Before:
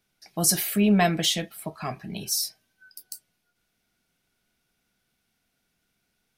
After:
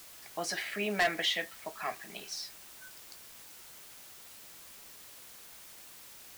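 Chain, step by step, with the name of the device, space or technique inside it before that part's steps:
drive-through speaker (band-pass filter 520–3,400 Hz; parametric band 1,900 Hz +9.5 dB 0.39 octaves; hard clipping −19.5 dBFS, distortion −9 dB; white noise bed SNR 12 dB)
level −3 dB

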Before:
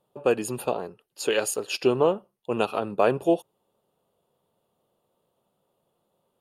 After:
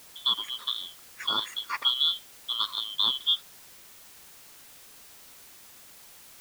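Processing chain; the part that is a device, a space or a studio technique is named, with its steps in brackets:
split-band scrambled radio (band-splitting scrambler in four parts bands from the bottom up 2413; band-pass filter 340–2,900 Hz; white noise bed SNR 18 dB)

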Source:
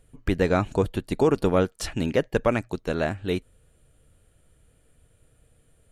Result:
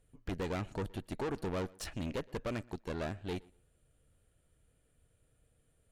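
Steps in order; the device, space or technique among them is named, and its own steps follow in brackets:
rockabilly slapback (tube saturation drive 26 dB, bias 0.7; tape delay 121 ms, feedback 21%, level −22.5 dB, low-pass 3,400 Hz)
level −6.5 dB

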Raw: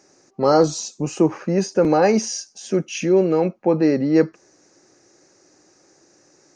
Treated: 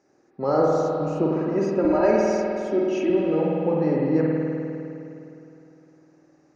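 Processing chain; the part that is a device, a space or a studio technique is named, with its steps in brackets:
0:01.36–0:03.10: comb filter 3.1 ms, depth 96%
through cloth (high-shelf EQ 3,600 Hz −16 dB)
spring reverb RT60 2.9 s, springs 51 ms, chirp 35 ms, DRR −3.5 dB
level −7.5 dB

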